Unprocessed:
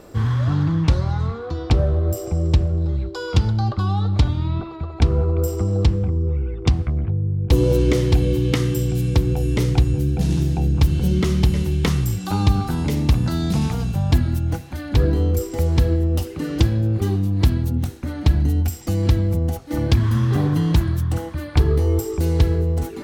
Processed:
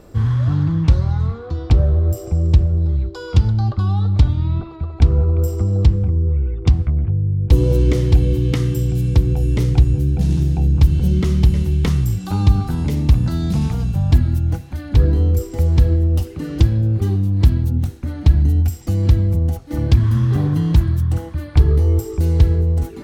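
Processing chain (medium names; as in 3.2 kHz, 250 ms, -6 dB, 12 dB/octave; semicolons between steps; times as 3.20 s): bass shelf 170 Hz +9.5 dB; trim -3.5 dB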